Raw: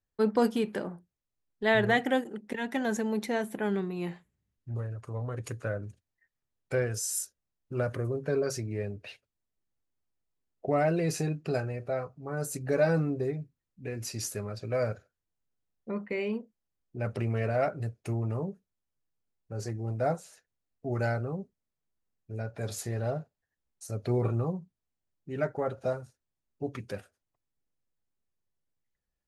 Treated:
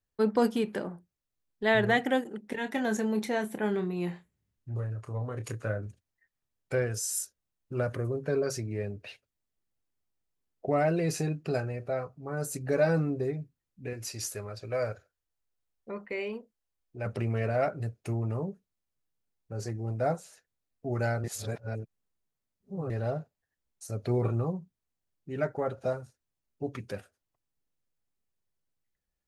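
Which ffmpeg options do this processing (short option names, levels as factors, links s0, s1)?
-filter_complex "[0:a]asettb=1/sr,asplit=3[s0][s1][s2];[s0]atrim=end=2.494[s3];[s1]atrim=start=2.49:end=5.87,asetpts=PTS-STARTPTS,afade=t=in:d=0.004:c=qsin,afade=t=out:st=3.376:d=0.004:c=qsin,asplit=2[s4][s5];[s5]adelay=28,volume=0.355[s6];[s4][s6]amix=inputs=2:normalize=0,atrim=end_sample=149058[s7];[s2]atrim=start=5.866[s8];[s3][s7]acrossfade=d=0.004:c1=hsin:c2=qsin[s9];[s9][s8]acrossfade=d=0.004:c1=qsin:c2=hsin,asettb=1/sr,asplit=3[s10][s11][s12];[s10]atrim=end=13.934[s13];[s11]atrim=start=13.93:end=17.06,asetpts=PTS-STARTPTS,afade=t=in:d=0.004:c=qsin,afade=t=out:st=3.126:d=0.004:c=qsin,equalizer=f=190:w=1:g=-8.5[s14];[s12]atrim=start=17.056[s15];[s13][s14]acrossfade=d=0.004:c1=hsin:c2=qsin[s16];[s16][s15]acrossfade=d=0.004:c1=qsin:c2=hsin,asplit=3[s17][s18][s19];[s17]atrim=end=21.242[s20];[s18]atrim=start=21.238:end=22.902,asetpts=PTS-STARTPTS,areverse[s21];[s19]atrim=start=22.898[s22];[s20][s21]acrossfade=d=0.004:c1=hsin:c2=hsin[s23];[s23][s22]acrossfade=d=0.004:c1=hsin:c2=hsin"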